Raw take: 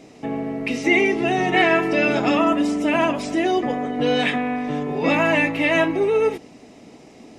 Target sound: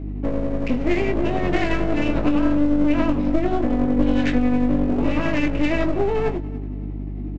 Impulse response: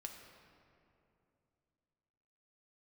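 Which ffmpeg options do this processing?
-filter_complex "[0:a]highpass=110,adynamicsmooth=sensitivity=1.5:basefreq=1.9k,lowpass=4k,lowshelf=f=400:t=q:w=3:g=6.5,acompressor=threshold=-14dB:ratio=6,tremolo=f=11:d=0.41,aresample=16000,aeval=exprs='clip(val(0),-1,0.0355)':c=same,aresample=44100,aeval=exprs='val(0)+0.0251*(sin(2*PI*50*n/s)+sin(2*PI*2*50*n/s)/2+sin(2*PI*3*50*n/s)/3+sin(2*PI*4*50*n/s)/4+sin(2*PI*5*50*n/s)/5)':c=same,asplit=2[a][b];[b]adelay=20,volume=-7dB[c];[a][c]amix=inputs=2:normalize=0,aecho=1:1:287|574:0.0794|0.027,asplit=2[d][e];[1:a]atrim=start_sample=2205[f];[e][f]afir=irnorm=-1:irlink=0,volume=-13dB[g];[d][g]amix=inputs=2:normalize=0"

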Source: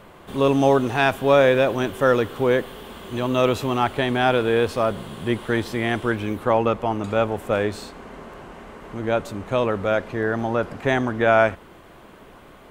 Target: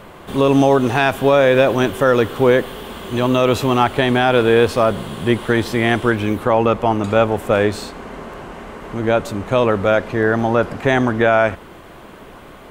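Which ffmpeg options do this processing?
-af "alimiter=limit=-10dB:level=0:latency=1:release=96,volume=7dB"

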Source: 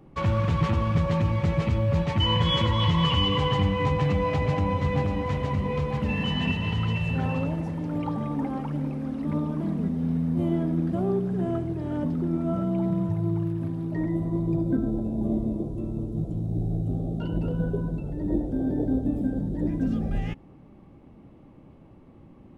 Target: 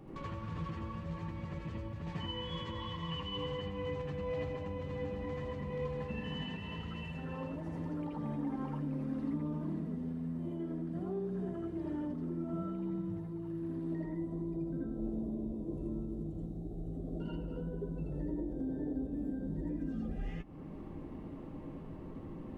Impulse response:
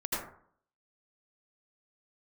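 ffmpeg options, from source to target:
-filter_complex "[0:a]acompressor=threshold=-38dB:ratio=4,alimiter=level_in=11dB:limit=-24dB:level=0:latency=1:release=404,volume=-11dB[a];[1:a]atrim=start_sample=2205,afade=t=out:st=0.14:d=0.01,atrim=end_sample=6615[b];[a][b]afir=irnorm=-1:irlink=0,volume=1.5dB"

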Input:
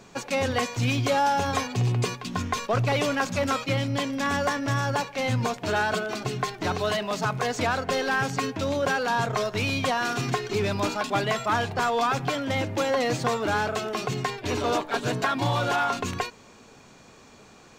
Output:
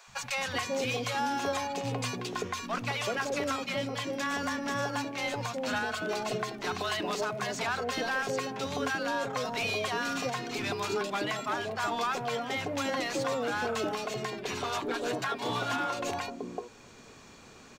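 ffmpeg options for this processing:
-filter_complex "[0:a]acrossover=split=160|4300[a][b][c];[a]acompressor=threshold=-46dB:ratio=6[d];[d][b][c]amix=inputs=3:normalize=0,acrossover=split=170|720[e][f][g];[e]adelay=70[h];[f]adelay=380[i];[h][i][g]amix=inputs=3:normalize=0,alimiter=limit=-21.5dB:level=0:latency=1:release=460"

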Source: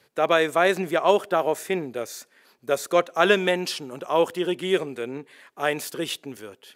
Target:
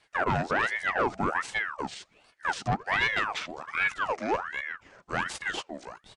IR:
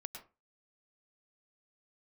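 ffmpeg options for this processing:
-af "atempo=1.9,asoftclip=type=tanh:threshold=-17.5dB,asetrate=25442,aresample=44100,aeval=exprs='val(0)*sin(2*PI*1200*n/s+1200*0.65/1.3*sin(2*PI*1.3*n/s))':c=same"

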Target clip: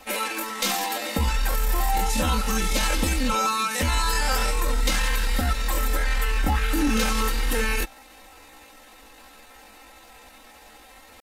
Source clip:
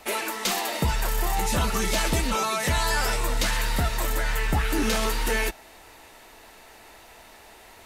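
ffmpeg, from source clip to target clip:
-af "aecho=1:1:3.8:0.91,atempo=0.7,volume=-1.5dB"

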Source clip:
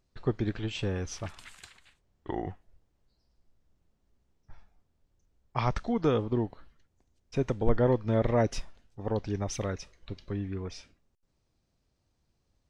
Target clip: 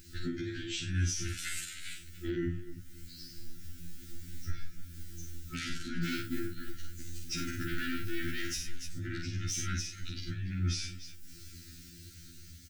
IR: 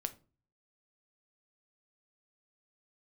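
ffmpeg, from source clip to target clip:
-filter_complex "[0:a]dynaudnorm=f=890:g=7:m=12dB,aeval=exprs='0.841*sin(PI/2*6.31*val(0)/0.841)':c=same,asettb=1/sr,asplit=3[a][b][c];[a]atrim=end=6.044[d];[b]atrim=start=6.04:end=8.56,asetpts=PTS-STARTPTS,afade=t=in:d=0.004:c=qsin,afade=t=out:st=2.516:d=0.004:c=qsin,acrusher=bits=8:mode=log:mix=0:aa=0.000001[e];[c]atrim=start=8.556[f];[d][e]acrossfade=d=0.004:c1=hsin:c2=qsin[g];[g][f]acrossfade=d=0.004:c1=qsin:c2=hsin,afftfilt=real='re*(1-between(b*sr/4096,360,1300))':imag='im*(1-between(b*sr/4096,360,1300))':win_size=4096:overlap=0.75,acompressor=threshold=-49dB:ratio=1.5,aemphasis=mode=production:type=50kf,aecho=1:1:47|53|88|292:0.596|0.119|0.266|0.112,alimiter=level_in=2dB:limit=-24dB:level=0:latency=1:release=455,volume=-2dB,afftfilt=real='re*2*eq(mod(b,4),0)':imag='im*2*eq(mod(b,4),0)':win_size=2048:overlap=0.75,volume=2.5dB"

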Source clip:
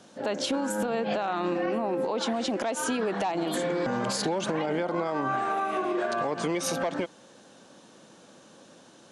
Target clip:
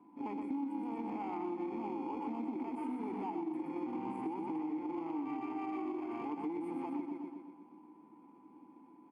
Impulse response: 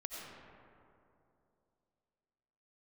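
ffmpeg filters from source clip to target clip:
-filter_complex "[0:a]asuperstop=centerf=4200:order=12:qfactor=0.65,aecho=1:1:122|244|366|488|610|732|854:0.596|0.31|0.161|0.0838|0.0436|0.0226|0.0118,aeval=exprs='0.188*(cos(1*acos(clip(val(0)/0.188,-1,1)))-cos(1*PI/2))+0.0266*(cos(4*acos(clip(val(0)/0.188,-1,1)))-cos(4*PI/2))':c=same,asplit=2[a][b];[b]acrusher=samples=23:mix=1:aa=0.000001,volume=-11.5dB[c];[a][c]amix=inputs=2:normalize=0,aeval=exprs='val(0)+0.00178*sin(2*PI*1000*n/s)':c=same,asplit=3[d][e][f];[d]bandpass=f=300:t=q:w=8,volume=0dB[g];[e]bandpass=f=870:t=q:w=8,volume=-6dB[h];[f]bandpass=f=2.24k:t=q:w=8,volume=-9dB[i];[g][h][i]amix=inputs=3:normalize=0,acompressor=threshold=-38dB:ratio=6,volume=2.5dB"

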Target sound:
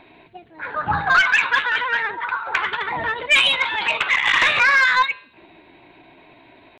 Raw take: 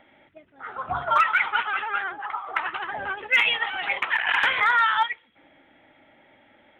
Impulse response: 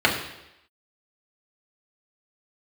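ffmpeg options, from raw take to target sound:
-filter_complex "[0:a]lowshelf=f=330:g=6,bandreject=f=198:t=h:w=4,bandreject=f=396:t=h:w=4,bandreject=f=594:t=h:w=4,bandreject=f=792:t=h:w=4,bandreject=f=990:t=h:w=4,bandreject=f=1.188k:t=h:w=4,bandreject=f=1.386k:t=h:w=4,bandreject=f=1.584k:t=h:w=4,bandreject=f=1.782k:t=h:w=4,bandreject=f=1.98k:t=h:w=4,bandreject=f=2.178k:t=h:w=4,bandreject=f=2.376k:t=h:w=4,bandreject=f=2.574k:t=h:w=4,bandreject=f=2.772k:t=h:w=4,bandreject=f=2.97k:t=h:w=4,bandreject=f=3.168k:t=h:w=4,bandreject=f=3.366k:t=h:w=4,bandreject=f=3.564k:t=h:w=4,bandreject=f=3.762k:t=h:w=4,bandreject=f=3.96k:t=h:w=4,asetrate=50951,aresample=44100,atempo=0.865537,aeval=exprs='(tanh(5.01*val(0)+0.05)-tanh(0.05))/5.01':c=same,asplit=2[a][b];[1:a]atrim=start_sample=2205,lowpass=1.1k[c];[b][c]afir=irnorm=-1:irlink=0,volume=-39dB[d];[a][d]amix=inputs=2:normalize=0,volume=6.5dB"

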